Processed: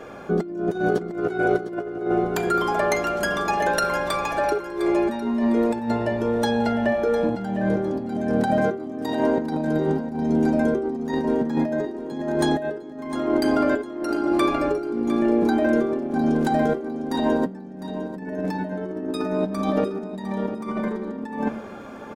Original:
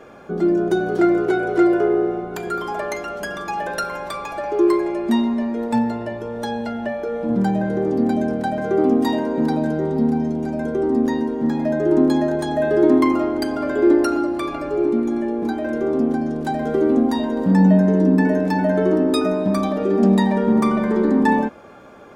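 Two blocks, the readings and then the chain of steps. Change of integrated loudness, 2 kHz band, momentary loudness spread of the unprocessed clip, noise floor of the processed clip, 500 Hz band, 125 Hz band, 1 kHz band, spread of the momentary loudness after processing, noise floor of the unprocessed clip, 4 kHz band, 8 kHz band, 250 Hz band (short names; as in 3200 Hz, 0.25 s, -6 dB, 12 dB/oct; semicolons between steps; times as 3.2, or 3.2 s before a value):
-4.0 dB, 0.0 dB, 10 LU, -37 dBFS, -3.5 dB, -6.0 dB, -1.0 dB, 9 LU, -31 dBFS, -1.0 dB, n/a, -5.5 dB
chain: de-hum 75.77 Hz, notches 39; negative-ratio compressor -23 dBFS, ratio -0.5; on a send: feedback echo 0.705 s, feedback 26%, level -12 dB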